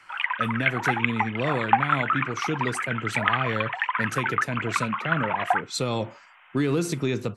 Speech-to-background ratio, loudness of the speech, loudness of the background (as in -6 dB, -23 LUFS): -3.0 dB, -29.5 LUFS, -26.5 LUFS